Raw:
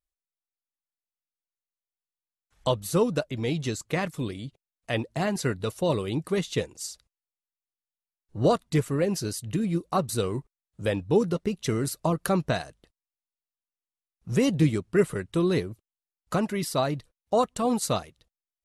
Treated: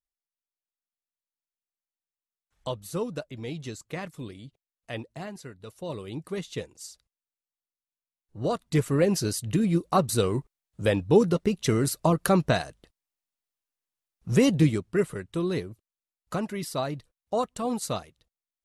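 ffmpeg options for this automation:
ffmpeg -i in.wav -af "volume=12.5dB,afade=type=out:start_time=4.99:duration=0.52:silence=0.334965,afade=type=in:start_time=5.51:duration=0.73:silence=0.298538,afade=type=in:start_time=8.48:duration=0.49:silence=0.334965,afade=type=out:start_time=14.36:duration=0.71:silence=0.446684" out.wav

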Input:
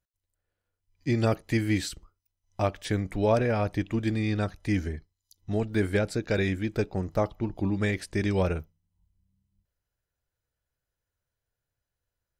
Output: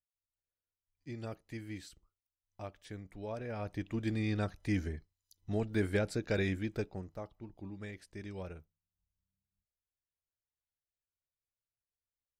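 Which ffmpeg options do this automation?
ffmpeg -i in.wav -af "volume=-6dB,afade=type=in:start_time=3.37:duration=0.84:silence=0.251189,afade=type=out:start_time=6.57:duration=0.6:silence=0.251189" out.wav

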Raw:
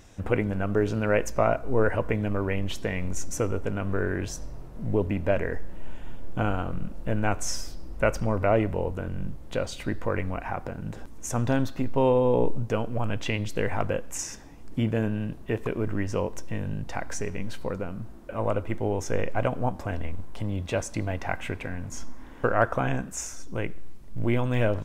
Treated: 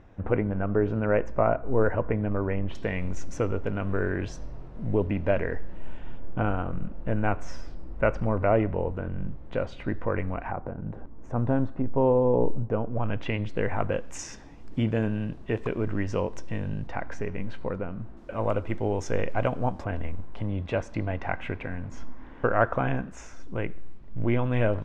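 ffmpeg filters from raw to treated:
ffmpeg -i in.wav -af "asetnsamples=nb_out_samples=441:pad=0,asendcmd='2.75 lowpass f 3600;6.18 lowpass f 2200;10.52 lowpass f 1100;12.99 lowpass f 2400;13.92 lowpass f 5200;16.87 lowpass f 2500;18.17 lowpass f 5800;19.84 lowpass f 2800',lowpass=1600" out.wav

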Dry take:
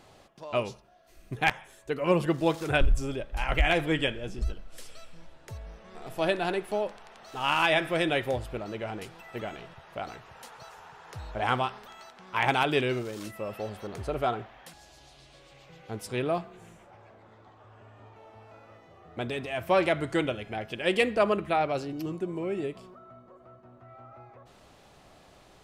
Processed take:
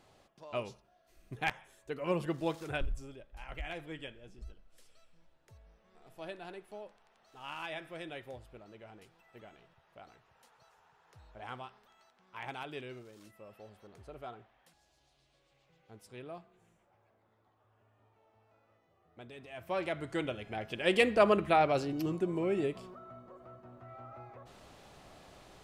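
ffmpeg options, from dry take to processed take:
ffmpeg -i in.wav -af "volume=9dB,afade=type=out:start_time=2.47:duration=0.68:silence=0.354813,afade=type=in:start_time=19.31:duration=0.81:silence=0.354813,afade=type=in:start_time=20.12:duration=1.26:silence=0.375837" out.wav

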